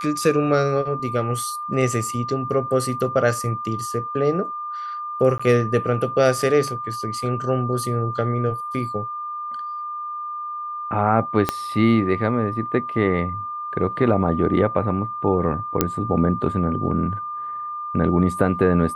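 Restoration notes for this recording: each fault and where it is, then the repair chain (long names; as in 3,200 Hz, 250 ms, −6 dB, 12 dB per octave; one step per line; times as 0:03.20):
whistle 1,200 Hz −27 dBFS
0:05.38–0:05.39: drop-out 15 ms
0:11.49: click −5 dBFS
0:15.81: click −2 dBFS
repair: click removal
notch filter 1,200 Hz, Q 30
repair the gap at 0:05.38, 15 ms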